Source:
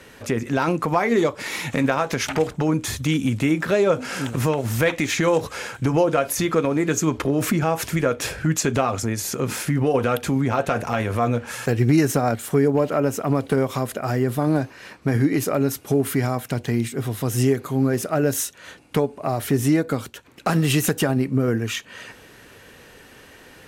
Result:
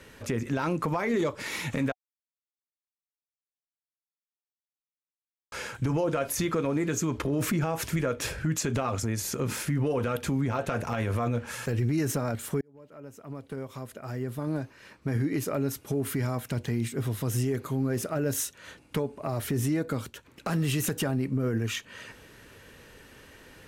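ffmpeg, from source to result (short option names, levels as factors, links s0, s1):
-filter_complex "[0:a]asplit=4[s0][s1][s2][s3];[s0]atrim=end=1.92,asetpts=PTS-STARTPTS,afade=t=out:st=1.916:d=0.004:c=hsin[s4];[s1]atrim=start=1.92:end=5.52,asetpts=PTS-STARTPTS,volume=0[s5];[s2]atrim=start=5.52:end=12.61,asetpts=PTS-STARTPTS,afade=t=in:d=0.004:c=hsin,afade=t=out:st=7.086:d=0.004:c=hsin[s6];[s3]atrim=start=12.61,asetpts=PTS-STARTPTS,afade=t=in:d=3.92[s7];[s4][s5][s6][s7]concat=n=4:v=0:a=1,lowshelf=f=110:g=6.5,bandreject=f=740:w=12,alimiter=limit=0.2:level=0:latency=1:release=16,volume=0.531"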